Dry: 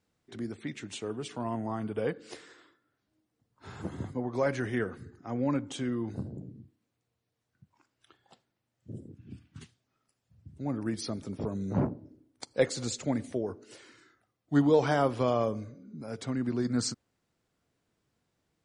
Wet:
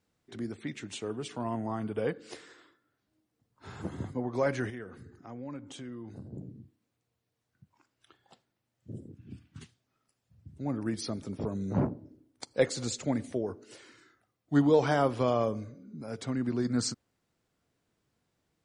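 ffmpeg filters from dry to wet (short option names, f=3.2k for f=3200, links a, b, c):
-filter_complex "[0:a]asettb=1/sr,asplit=3[a][b][c];[a]atrim=end=4.704[d];[b]atrim=start=4.7:end=6.33,asetpts=PTS-STARTPTS,afade=t=in:d=0.004:c=qsin,afade=t=out:st=1.626:d=0.004:c=qsin,acompressor=threshold=-47dB:ratio=2:attack=3.2:release=140:knee=1:detection=peak[e];[c]atrim=start=6.326[f];[d][e]acrossfade=d=0.004:c1=hsin:c2=qsin[g];[g][f]acrossfade=d=0.004:c1=qsin:c2=hsin"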